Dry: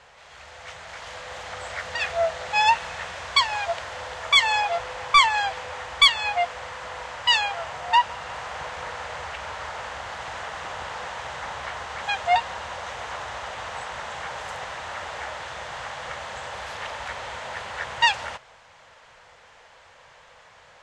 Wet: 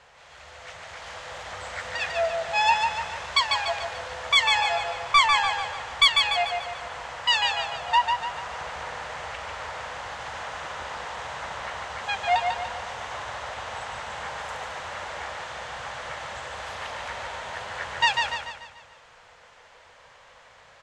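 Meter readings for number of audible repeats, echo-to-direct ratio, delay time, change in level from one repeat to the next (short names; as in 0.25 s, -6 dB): 5, -3.5 dB, 0.146 s, -6.5 dB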